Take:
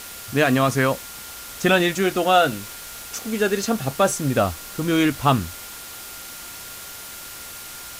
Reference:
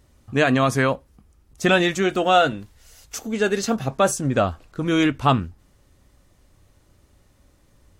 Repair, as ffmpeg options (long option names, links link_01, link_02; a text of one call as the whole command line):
ffmpeg -i in.wav -af "bandreject=frequency=1400:width=30,afwtdn=0.016" out.wav